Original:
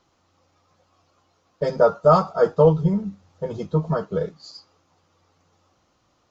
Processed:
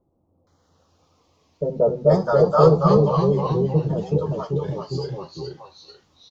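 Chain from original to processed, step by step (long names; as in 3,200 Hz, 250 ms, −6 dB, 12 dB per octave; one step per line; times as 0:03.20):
auto-filter notch saw down 0.62 Hz 820–2,800 Hz
delay with pitch and tempo change per echo 155 ms, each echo −1 semitone, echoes 3
multiband delay without the direct sound lows, highs 470 ms, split 690 Hz
level +1 dB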